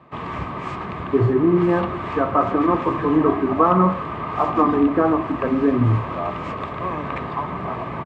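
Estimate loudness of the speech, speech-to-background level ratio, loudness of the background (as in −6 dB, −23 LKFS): −20.0 LKFS, 8.0 dB, −28.0 LKFS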